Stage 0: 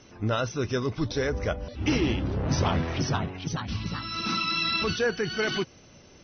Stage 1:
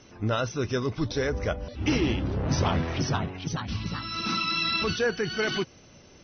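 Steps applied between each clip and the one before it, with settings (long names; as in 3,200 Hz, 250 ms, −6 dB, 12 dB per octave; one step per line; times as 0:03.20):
no processing that can be heard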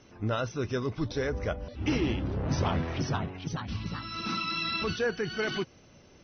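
high-shelf EQ 4,400 Hz −6 dB
level −3 dB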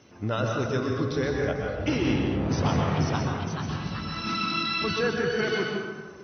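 high-pass filter 79 Hz
dense smooth reverb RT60 1.6 s, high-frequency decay 0.45×, pre-delay 110 ms, DRR 0 dB
level +1.5 dB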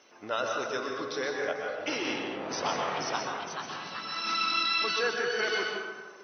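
high-pass filter 540 Hz 12 dB per octave
dynamic equaliser 5,300 Hz, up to +3 dB, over −44 dBFS, Q 1.8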